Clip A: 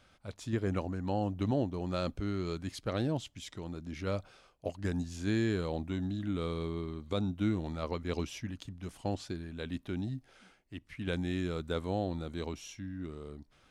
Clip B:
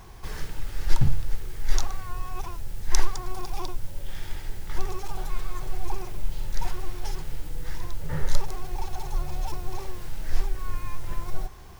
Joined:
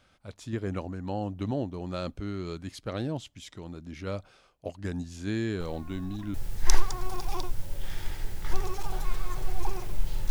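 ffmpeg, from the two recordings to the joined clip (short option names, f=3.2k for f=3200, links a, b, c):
-filter_complex "[1:a]asplit=2[a][b];[0:a]apad=whole_dur=10.3,atrim=end=10.3,atrim=end=6.342[c];[b]atrim=start=2.588:end=6.55[d];[a]atrim=start=1.85:end=2.59,asetpts=PTS-STARTPTS,volume=-14dB,afade=t=in:d=0.004:c=hsin,afade=t=out:st=0.736:d=0.004:c=hsin,adelay=5600[e];[c][d]acrossfade=d=0.004:c1=hsin:c2=hsin[f];[f][e]amix=inputs=2:normalize=0"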